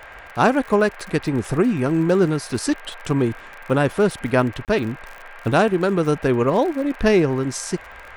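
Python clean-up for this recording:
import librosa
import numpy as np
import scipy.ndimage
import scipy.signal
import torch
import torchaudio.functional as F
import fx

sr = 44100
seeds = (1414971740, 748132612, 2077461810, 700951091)

y = fx.fix_declick_ar(x, sr, threshold=6.5)
y = fx.notch(y, sr, hz=1600.0, q=30.0)
y = fx.fix_interpolate(y, sr, at_s=(4.65,), length_ms=28.0)
y = fx.noise_reduce(y, sr, print_start_s=4.95, print_end_s=5.45, reduce_db=24.0)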